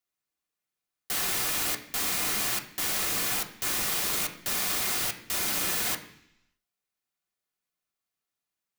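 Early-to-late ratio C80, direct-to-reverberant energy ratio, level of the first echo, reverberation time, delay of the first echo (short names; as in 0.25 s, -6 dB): 13.5 dB, 1.0 dB, none, 0.70 s, none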